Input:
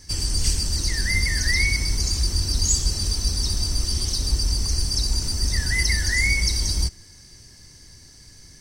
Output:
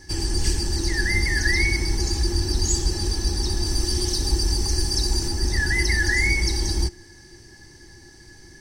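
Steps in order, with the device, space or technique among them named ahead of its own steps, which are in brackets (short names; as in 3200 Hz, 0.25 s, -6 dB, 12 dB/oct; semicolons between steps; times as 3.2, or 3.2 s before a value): inside a helmet (high shelf 4300 Hz -5 dB; small resonant body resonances 350/820/1700 Hz, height 16 dB, ringing for 65 ms); 3.66–5.28 high shelf 4700 Hz +5.5 dB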